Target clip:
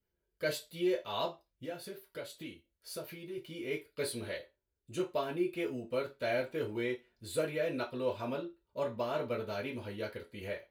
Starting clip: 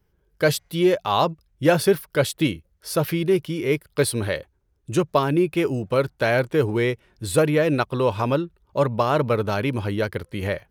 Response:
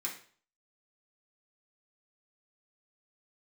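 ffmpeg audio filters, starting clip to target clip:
-filter_complex "[0:a]asettb=1/sr,asplit=3[a][b][c];[a]atrim=end=1.254[d];[b]atrim=start=1.25:end=3.38,asetpts=PTS-STARTPTS,afade=t=in:d=0.004:c=qsin,afade=t=out:st=2.126:d=0.004:c=qsin,acompressor=threshold=-25dB:ratio=6[e];[c]atrim=start=3.376[f];[d][e]acrossfade=d=0.004:c1=hsin:c2=qsin[g];[g][f]acrossfade=d=0.004:c1=qsin:c2=hsin[h];[1:a]atrim=start_sample=2205,asetrate=83790,aresample=44100[i];[h][i]afir=irnorm=-1:irlink=0,volume=-8.5dB"

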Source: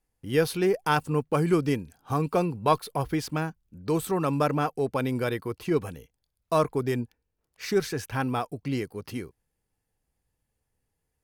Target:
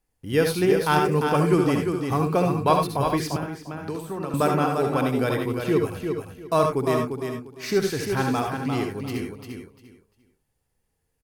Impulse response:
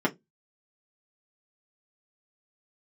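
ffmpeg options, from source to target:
-filter_complex "[0:a]asplit=2[a][b];[b]aecho=0:1:348|696|1044:0.501|0.11|0.0243[c];[a][c]amix=inputs=2:normalize=0,asettb=1/sr,asplit=3[d][e][f];[d]atrim=end=3.364[g];[e]atrim=start=3.36:end=4.34,asetpts=PTS-STARTPTS,afade=t=in:d=0.004:c=qsin,afade=t=out:st=0.976:d=0.004:c=qsin,acrossover=split=200|1700[h][i][j];[h]acompressor=threshold=-43dB:ratio=4[k];[i]acompressor=threshold=-34dB:ratio=4[l];[j]acompressor=threshold=-51dB:ratio=4[m];[k][l][m]amix=inputs=3:normalize=0[n];[f]atrim=start=4.336[o];[g][n]acrossfade=d=0.004:c1=hsin:c2=qsin[p];[p][o]acrossfade=d=0.004:c1=qsin:c2=hsin,asplit=2[q][r];[r]aecho=0:1:67|78|98:0.447|0.376|0.224[s];[q][s]amix=inputs=2:normalize=0,volume=2dB"

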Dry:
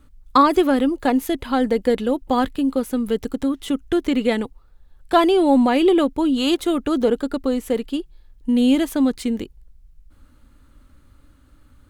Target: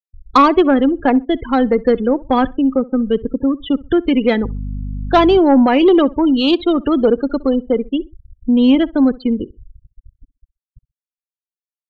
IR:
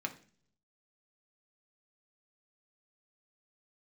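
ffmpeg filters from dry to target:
-filter_complex "[0:a]aresample=11025,aresample=44100,acrossover=split=430[a][b];[a]acrusher=bits=6:mix=0:aa=0.000001[c];[c][b]amix=inputs=2:normalize=0,asettb=1/sr,asplit=3[d][e][f];[d]atrim=end=4.434[g];[e]atrim=start=4.43:end=5.39,asetpts=PTS-STARTPTS,afade=t=in:d=0.004:c=qsin,afade=t=out:st=0.956:d=0.004:c=qsin,aeval=exprs='val(0)+0.0398*(sin(2*PI*50*n/s)+sin(2*PI*2*50*n/s)/2+sin(2*PI*3*50*n/s)/3+sin(2*PI*4*50*n/s)/4+sin(2*PI*5*50*n/s)/5)':c=same[h];[f]atrim=start=5.386[i];[g][h]acrossfade=d=0.004:c1=hsin:c2=qsin[j];[j][i]acrossfade=d=0.004:c1=qsin:c2=hsin,afftfilt=real='re*gte(hypot(re,im),0.0562)':imag='im*gte(hypot(re,im),0.0562)':win_size=1024:overlap=0.75,asplit=2[k][l];[l]aeval=exprs='0.708*sin(PI/2*2*val(0)/0.708)':c=same,volume=-10.5dB[m];[k][m]amix=inputs=2:normalize=0,asplit=2[n][o];[o]adelay=64,lowpass=f=1.8k:p=1,volume=-21dB,asplit=2[p][q];[q]adelay=64,lowpass=f=1.8k:p=1,volume=0.27[r];[n][p][r]amix=inputs=3:normalize=0"

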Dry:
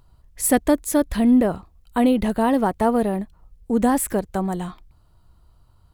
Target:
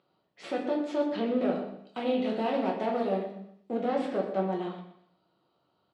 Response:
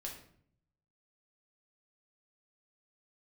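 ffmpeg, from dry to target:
-filter_complex "[0:a]asettb=1/sr,asplit=3[a][b][c];[a]atrim=end=1.374[d];[b]atrim=start=1.37:end=3.75,asetpts=PTS-STARTPTS,afade=t=in:d=0.004:c=qsin,afade=t=out:st=2.376:d=0.004:c=qsin,aemphasis=mode=production:type=75fm[e];[c]atrim=start=3.746[f];[d][e]acrossfade=d=0.004:c1=hsin:c2=qsin[g];[g][f]acrossfade=d=0.004:c1=qsin:c2=hsin,alimiter=limit=-12.5dB:level=0:latency=1:release=104,aeval=exprs='clip(val(0),-1,0.0376)':c=same,highpass=f=220:w=0.5412,highpass=f=220:w=1.3066,equalizer=f=250:t=q:w=4:g=-5,equalizer=f=1k:t=q:w=4:g=-7,equalizer=f=1.7k:t=q:w=4:g=-7,lowpass=f=4k:w=0.5412,lowpass=f=4k:w=1.3066,aecho=1:1:122|244|366:0.211|0.0761|0.0274[h];[1:a]atrim=start_sample=2205,afade=t=out:st=0.32:d=0.01,atrim=end_sample=14553[i];[h][i]afir=irnorm=-1:irlink=0"

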